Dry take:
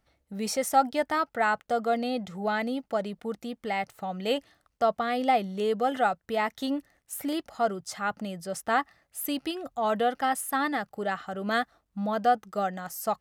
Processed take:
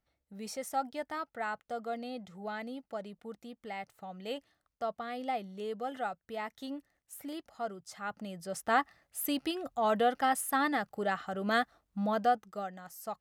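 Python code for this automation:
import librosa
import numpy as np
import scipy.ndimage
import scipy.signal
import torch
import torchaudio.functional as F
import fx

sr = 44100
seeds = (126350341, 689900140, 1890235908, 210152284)

y = fx.gain(x, sr, db=fx.line((7.85, -11.0), (8.78, -2.0), (12.13, -2.0), (12.69, -11.0)))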